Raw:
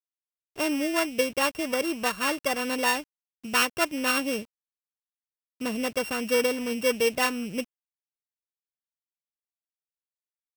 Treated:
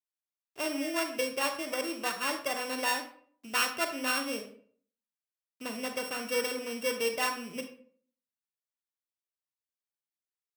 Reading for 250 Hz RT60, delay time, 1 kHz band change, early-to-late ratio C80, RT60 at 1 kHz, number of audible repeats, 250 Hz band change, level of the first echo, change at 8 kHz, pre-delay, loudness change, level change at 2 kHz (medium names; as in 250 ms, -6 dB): 0.60 s, no echo, -4.5 dB, 12.5 dB, 0.50 s, no echo, -8.0 dB, no echo, -4.0 dB, 31 ms, -5.5 dB, -5.0 dB